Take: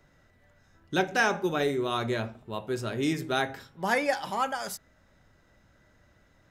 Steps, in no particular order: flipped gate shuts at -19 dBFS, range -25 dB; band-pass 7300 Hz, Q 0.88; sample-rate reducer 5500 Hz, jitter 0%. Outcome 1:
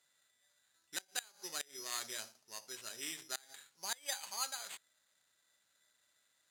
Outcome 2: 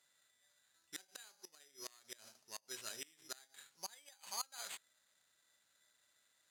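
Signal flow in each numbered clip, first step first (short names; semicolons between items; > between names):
sample-rate reducer > band-pass > flipped gate; flipped gate > sample-rate reducer > band-pass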